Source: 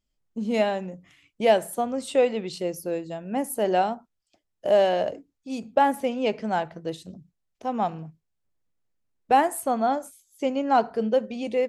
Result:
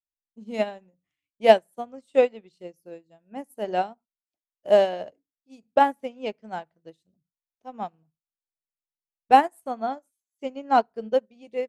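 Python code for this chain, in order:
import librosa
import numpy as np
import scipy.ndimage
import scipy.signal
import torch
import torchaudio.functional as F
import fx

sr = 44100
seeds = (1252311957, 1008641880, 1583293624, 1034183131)

y = fx.upward_expand(x, sr, threshold_db=-37.0, expansion=2.5)
y = y * librosa.db_to_amplitude(6.0)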